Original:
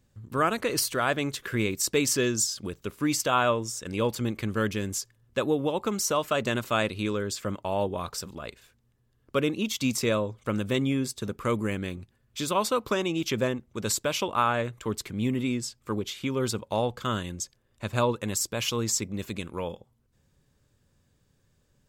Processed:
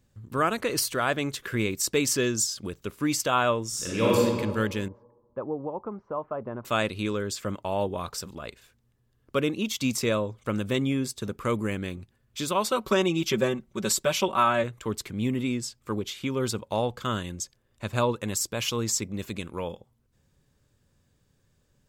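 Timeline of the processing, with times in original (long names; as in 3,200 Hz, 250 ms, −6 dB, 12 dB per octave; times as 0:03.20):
0:03.68–0:04.17: thrown reverb, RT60 1.7 s, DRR −6 dB
0:04.88–0:06.65: transistor ladder low-pass 1,200 Hz, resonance 35%
0:12.70–0:14.64: comb filter 5.3 ms, depth 79%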